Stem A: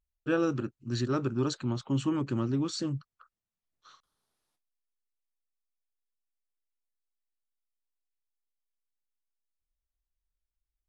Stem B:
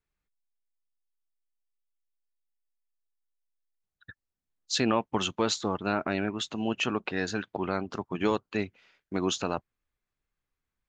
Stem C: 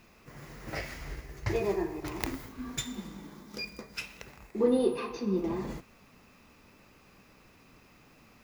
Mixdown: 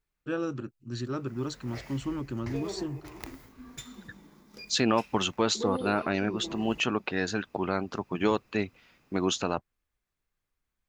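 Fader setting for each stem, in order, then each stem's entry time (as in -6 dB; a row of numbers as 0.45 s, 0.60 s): -4.0 dB, +1.0 dB, -8.0 dB; 0.00 s, 0.00 s, 1.00 s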